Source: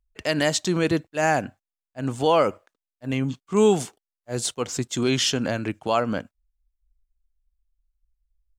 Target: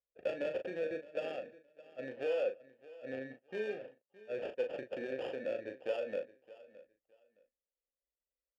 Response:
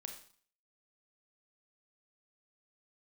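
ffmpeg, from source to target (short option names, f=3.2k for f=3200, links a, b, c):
-filter_complex "[0:a]equalizer=f=150:w=1.8:g=-3.5,acompressor=threshold=-26dB:ratio=6,acrusher=samples=22:mix=1:aa=0.000001,adynamicsmooth=sensitivity=3.5:basefreq=1.8k,asplit=3[a][b][c];[a]bandpass=f=530:t=q:w=8,volume=0dB[d];[b]bandpass=f=1.84k:t=q:w=8,volume=-6dB[e];[c]bandpass=f=2.48k:t=q:w=8,volume=-9dB[f];[d][e][f]amix=inputs=3:normalize=0,asplit=2[g][h];[h]adelay=38,volume=-7dB[i];[g][i]amix=inputs=2:normalize=0,asplit=2[j][k];[k]aecho=0:1:616|1232:0.112|0.0236[l];[j][l]amix=inputs=2:normalize=0,volume=2.5dB"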